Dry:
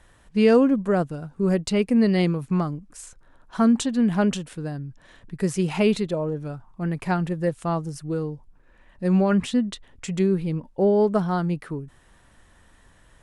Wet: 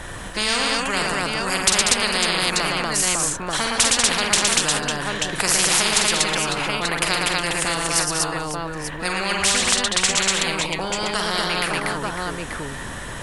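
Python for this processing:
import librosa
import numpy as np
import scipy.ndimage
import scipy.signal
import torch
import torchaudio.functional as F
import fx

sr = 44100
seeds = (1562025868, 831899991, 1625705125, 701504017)

p1 = x + fx.echo_multitap(x, sr, ms=(47, 114, 191, 240, 551, 886), db=(-7.5, -7.0, -12.0, -3.5, -15.0, -13.5), dry=0)
p2 = fx.spectral_comp(p1, sr, ratio=10.0)
y = p2 * librosa.db_to_amplitude(2.5)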